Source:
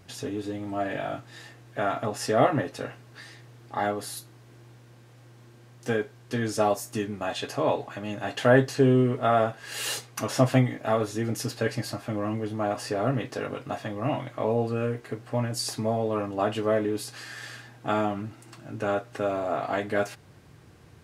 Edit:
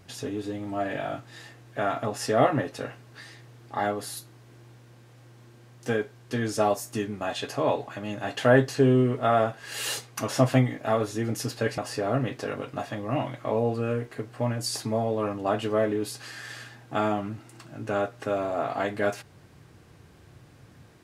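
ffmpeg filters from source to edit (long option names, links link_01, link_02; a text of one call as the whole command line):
ffmpeg -i in.wav -filter_complex "[0:a]asplit=2[link_01][link_02];[link_01]atrim=end=11.782[link_03];[link_02]atrim=start=12.708[link_04];[link_03][link_04]acrossfade=duration=0.004:curve1=hsin:curve2=hsin" out.wav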